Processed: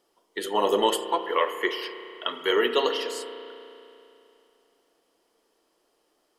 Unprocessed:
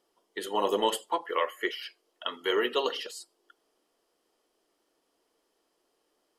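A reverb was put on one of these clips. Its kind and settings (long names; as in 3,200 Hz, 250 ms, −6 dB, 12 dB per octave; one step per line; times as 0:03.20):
spring reverb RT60 2.8 s, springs 33 ms, chirp 45 ms, DRR 8.5 dB
level +4 dB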